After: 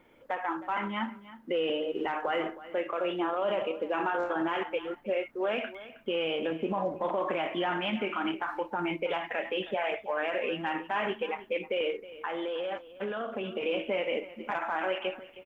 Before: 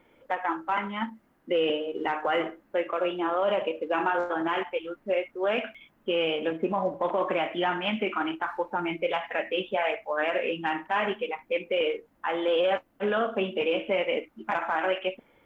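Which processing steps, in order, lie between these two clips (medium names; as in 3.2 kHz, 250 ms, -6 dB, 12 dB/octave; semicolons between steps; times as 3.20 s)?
peak limiter -21.5 dBFS, peak gain reduction 5 dB; 11.90–13.63 s: compression, threshold -31 dBFS, peak gain reduction 5.5 dB; delay 316 ms -16.5 dB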